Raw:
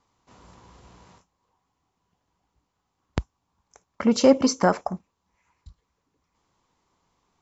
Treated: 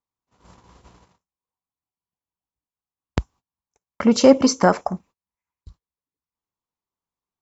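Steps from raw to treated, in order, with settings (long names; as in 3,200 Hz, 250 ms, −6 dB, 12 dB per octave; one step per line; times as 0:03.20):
noise gate −50 dBFS, range −27 dB
level +4 dB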